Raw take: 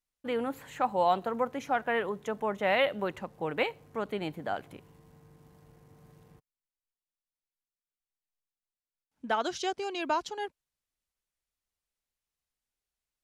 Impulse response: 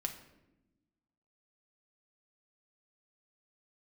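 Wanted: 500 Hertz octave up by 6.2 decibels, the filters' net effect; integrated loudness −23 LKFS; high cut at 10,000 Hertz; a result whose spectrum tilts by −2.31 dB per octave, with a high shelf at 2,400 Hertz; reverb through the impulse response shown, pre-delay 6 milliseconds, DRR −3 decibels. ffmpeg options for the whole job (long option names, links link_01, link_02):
-filter_complex "[0:a]lowpass=10000,equalizer=frequency=500:width_type=o:gain=7,highshelf=frequency=2400:gain=6,asplit=2[link_01][link_02];[1:a]atrim=start_sample=2205,adelay=6[link_03];[link_02][link_03]afir=irnorm=-1:irlink=0,volume=2.5dB[link_04];[link_01][link_04]amix=inputs=2:normalize=0,volume=-0.5dB"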